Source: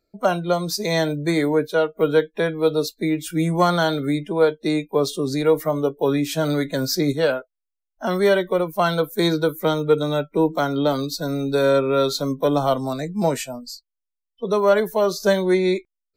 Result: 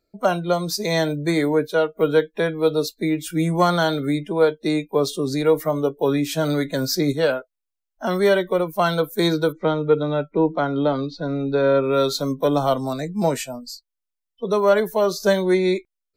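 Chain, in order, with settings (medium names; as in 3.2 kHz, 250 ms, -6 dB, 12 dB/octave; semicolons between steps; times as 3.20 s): 9.52–11.84 s: Gaussian low-pass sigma 2.4 samples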